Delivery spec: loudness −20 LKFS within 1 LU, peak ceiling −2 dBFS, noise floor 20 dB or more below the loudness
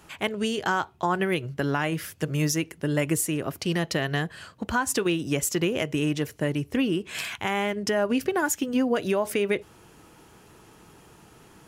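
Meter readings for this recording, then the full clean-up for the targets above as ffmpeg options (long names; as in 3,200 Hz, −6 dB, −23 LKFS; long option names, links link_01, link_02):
integrated loudness −26.5 LKFS; sample peak −11.5 dBFS; target loudness −20.0 LKFS
→ -af "volume=6.5dB"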